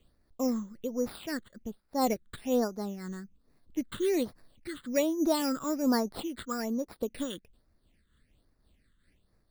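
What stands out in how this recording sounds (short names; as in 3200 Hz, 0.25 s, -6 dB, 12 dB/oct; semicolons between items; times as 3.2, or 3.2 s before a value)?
aliases and images of a low sample rate 6300 Hz, jitter 0%; phasing stages 8, 1.2 Hz, lowest notch 710–3000 Hz; noise-modulated level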